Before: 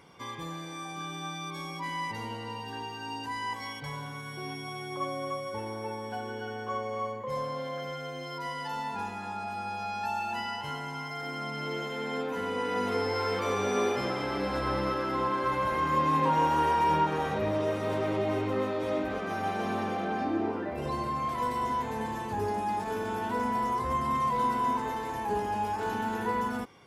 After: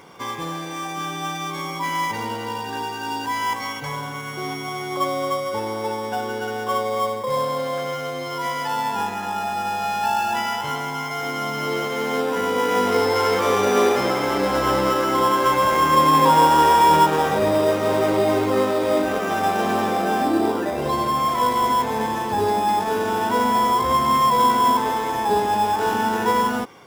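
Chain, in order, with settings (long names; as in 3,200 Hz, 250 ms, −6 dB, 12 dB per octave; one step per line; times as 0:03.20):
low-shelf EQ 170 Hz −10.5 dB
in parallel at −5.5 dB: sample-rate reduction 4,300 Hz, jitter 0%
on the sum: level +8.5 dB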